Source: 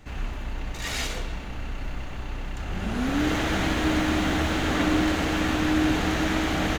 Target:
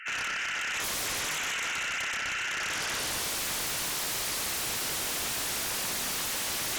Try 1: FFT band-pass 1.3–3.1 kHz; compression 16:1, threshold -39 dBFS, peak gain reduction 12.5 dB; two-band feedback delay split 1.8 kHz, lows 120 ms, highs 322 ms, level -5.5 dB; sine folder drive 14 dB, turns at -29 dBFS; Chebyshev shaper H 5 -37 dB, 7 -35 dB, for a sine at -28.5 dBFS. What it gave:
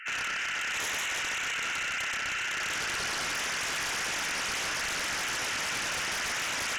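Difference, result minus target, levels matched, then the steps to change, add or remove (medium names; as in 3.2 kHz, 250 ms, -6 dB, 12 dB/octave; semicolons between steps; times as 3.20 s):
compression: peak gain reduction +8 dB
change: compression 16:1, threshold -30.5 dBFS, peak gain reduction 4.5 dB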